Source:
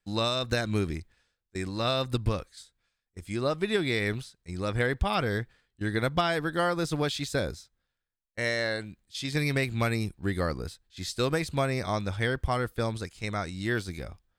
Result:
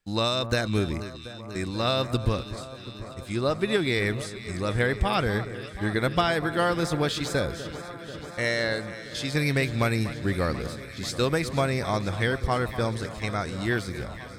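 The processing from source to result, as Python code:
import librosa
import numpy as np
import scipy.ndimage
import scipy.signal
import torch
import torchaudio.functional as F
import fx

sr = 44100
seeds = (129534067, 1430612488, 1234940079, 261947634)

y = fx.peak_eq(x, sr, hz=7800.0, db=8.0, octaves=1.3, at=(4.18, 4.61))
y = fx.echo_alternate(y, sr, ms=244, hz=1600.0, feedback_pct=87, wet_db=-13.0)
y = y * 10.0 ** (2.5 / 20.0)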